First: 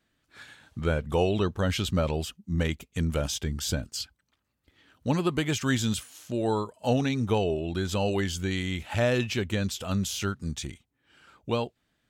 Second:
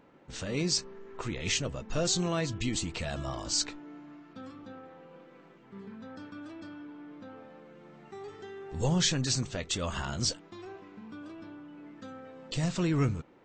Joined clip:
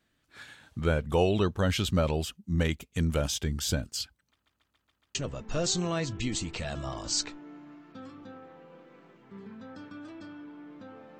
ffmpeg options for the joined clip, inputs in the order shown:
-filter_complex "[0:a]apad=whole_dur=11.19,atrim=end=11.19,asplit=6[a][b][c][d][e][f];[a]atrim=end=4.452[g];[b]atrim=start=4.308:end=4.452[h];[c]atrim=start=4.308:end=4.452[i];[d]atrim=start=4.308:end=4.452[j];[e]atrim=start=4.308:end=4.452[k];[f]atrim=start=4.308:end=4.452[l];[1:a]atrim=start=1.558:end=7.6[m];[g][h]acrossfade=d=0.004:c1=hsin:c2=hsin[n];[n][i]acrossfade=d=0.004:c1=hsin:c2=hsin[o];[o][j]acrossfade=d=0.004:c1=hsin:c2=hsin[p];[p][k]acrossfade=d=0.004:c1=hsin:c2=hsin[q];[q][l]acrossfade=d=0.004:c1=hsin:c2=hsin[r];[r][m]acrossfade=d=0.004:c1=hsin:c2=hsin"

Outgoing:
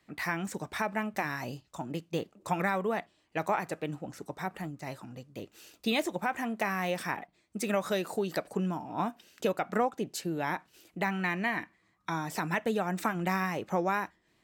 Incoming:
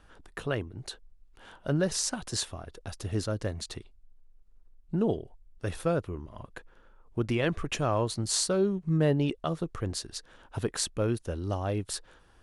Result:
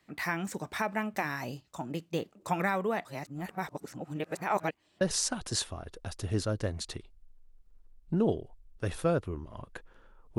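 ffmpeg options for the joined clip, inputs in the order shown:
-filter_complex "[0:a]apad=whole_dur=10.38,atrim=end=10.38,asplit=2[a][b];[a]atrim=end=3.052[c];[b]atrim=start=3.048:end=5.012,asetpts=PTS-STARTPTS,areverse[d];[1:a]atrim=start=1.818:end=7.19[e];[c][d]acrossfade=d=0.004:c1=hsin:c2=hsin[f];[f][e]acrossfade=d=0.004:c1=hsin:c2=hsin"

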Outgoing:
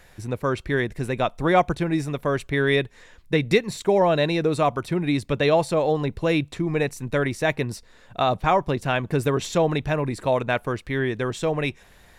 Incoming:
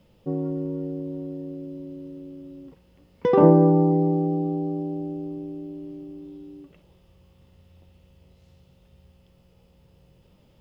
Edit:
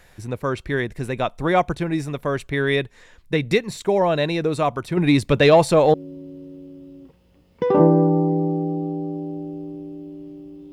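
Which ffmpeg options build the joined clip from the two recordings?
-filter_complex "[0:a]asettb=1/sr,asplit=3[a][b][c];[a]atrim=end=4.974[d];[b]atrim=start=4.97:end=5.94,asetpts=PTS-STARTPTS,afade=t=in:d=0.004:c=qsin,afade=t=out:st=0.966:d=0.004:c=qsin,acontrast=74[e];[c]atrim=start=5.936[f];[d][e]acrossfade=d=0.004:c1=hsin:c2=qsin[g];[g][f]acrossfade=d=0.004:c1=qsin:c2=hsin,apad=whole_dur=10.72,atrim=end=10.72,atrim=end=5.942[h];[1:a]atrim=start=1.568:end=6.35[i];[h][i]acrossfade=d=0.004:c1=hsin:c2=hsin"

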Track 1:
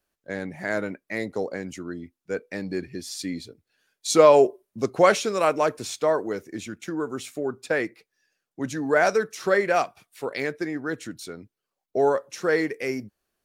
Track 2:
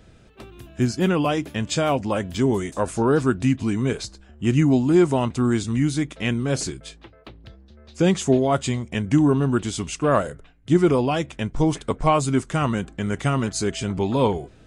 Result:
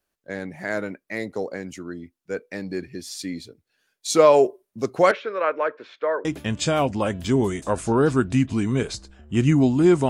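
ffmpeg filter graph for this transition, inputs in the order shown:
-filter_complex "[0:a]asettb=1/sr,asplit=3[a][b][c];[a]atrim=end=5.114[d];[b]atrim=start=5.11:end=6.25,asetpts=PTS-STARTPTS,afade=t=in:d=0.004:c=qsin,afade=t=out:st=1.136:d=0.004:c=qsin,highpass=460,equalizer=f=520:t=q:w=4:g=4,equalizer=f=750:t=q:w=4:g=-8,equalizer=f=1.6k:t=q:w=4:g=5,equalizer=f=2.6k:t=q:w=4:g=-4,lowpass=f=2.8k:w=0.5412,lowpass=f=2.8k:w=1.3066[e];[c]atrim=start=6.246[f];[d][e]acrossfade=d=0.004:c1=hsin:c2=qsin[g];[g][f]acrossfade=d=0.004:c1=qsin:c2=hsin,apad=whole_dur=10.09,atrim=end=10.09,atrim=end=6.252[h];[1:a]atrim=start=1.348:end=5.19[i];[h][i]acrossfade=d=0.004:c1=hsin:c2=hsin"

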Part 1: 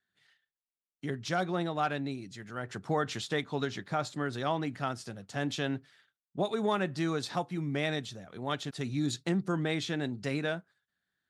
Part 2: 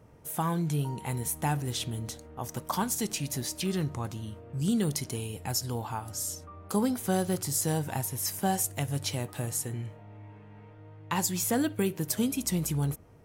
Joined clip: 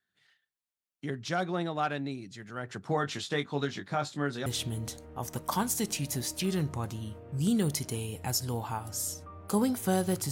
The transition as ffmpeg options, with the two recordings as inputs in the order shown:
-filter_complex "[0:a]asettb=1/sr,asplit=3[a][b][c];[a]atrim=end=2.874[d];[b]atrim=start=2.87:end=4.46,asetpts=PTS-STARTPTS,afade=t=in:d=0.004:c=qsin,afade=t=out:st=1.586:d=0.004:c=qsin,asplit=2[e][f];[f]adelay=21,volume=-7dB[g];[e][g]amix=inputs=2:normalize=0,atrim=end_sample=70119[h];[c]atrim=start=4.456[i];[d][h]acrossfade=d=0.004:c1=hsin:c2=qsin[j];[j][i]acrossfade=d=0.004:c1=qsin:c2=hsin,apad=whole_dur=10.31,atrim=end=10.31,atrim=end=4.462[k];[1:a]atrim=start=1.668:end=7.52[l];[k][l]acrossfade=d=0.004:c1=hsin:c2=hsin"

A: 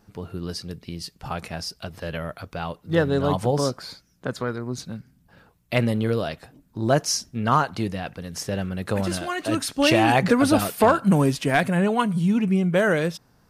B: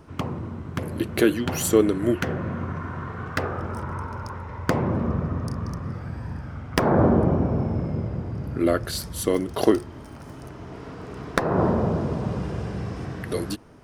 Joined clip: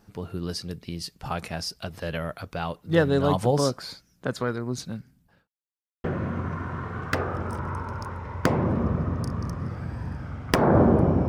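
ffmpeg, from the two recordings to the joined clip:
-filter_complex "[0:a]apad=whole_dur=11.28,atrim=end=11.28,asplit=2[a][b];[a]atrim=end=5.48,asetpts=PTS-STARTPTS,afade=t=out:st=4.9:d=0.58:c=qsin[c];[b]atrim=start=5.48:end=6.04,asetpts=PTS-STARTPTS,volume=0[d];[1:a]atrim=start=2.28:end=7.52,asetpts=PTS-STARTPTS,afade=t=in:d=0.004:c=hsin[e];[c][d][e]concat=n=3:v=0:a=1"

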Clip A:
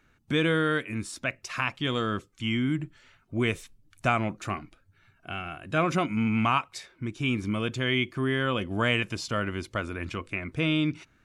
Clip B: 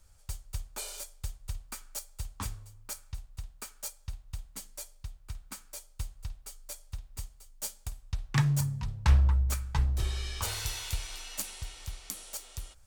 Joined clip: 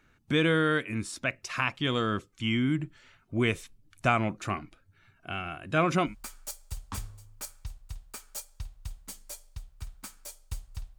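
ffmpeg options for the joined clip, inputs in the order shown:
-filter_complex "[0:a]apad=whole_dur=10.98,atrim=end=10.98,atrim=end=6.15,asetpts=PTS-STARTPTS[a];[1:a]atrim=start=1.53:end=6.46,asetpts=PTS-STARTPTS[b];[a][b]acrossfade=d=0.1:c1=tri:c2=tri"

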